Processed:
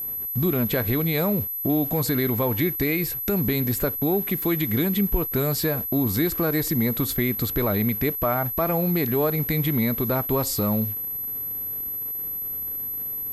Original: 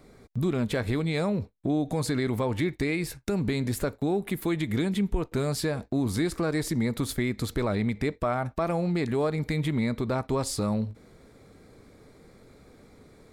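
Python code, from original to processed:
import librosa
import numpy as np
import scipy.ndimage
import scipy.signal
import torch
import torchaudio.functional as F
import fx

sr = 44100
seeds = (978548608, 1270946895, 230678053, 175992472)

y = fx.delta_hold(x, sr, step_db=-47.0)
y = y + 10.0 ** (-31.0 / 20.0) * np.sin(2.0 * np.pi * 12000.0 * np.arange(len(y)) / sr)
y = y * librosa.db_to_amplitude(3.5)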